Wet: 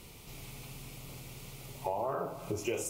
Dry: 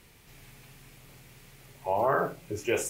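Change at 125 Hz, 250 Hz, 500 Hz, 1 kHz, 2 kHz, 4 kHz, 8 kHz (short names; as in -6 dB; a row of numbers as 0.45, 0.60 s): -1.0, -3.5, -6.5, -7.5, -11.0, -1.5, -3.0 dB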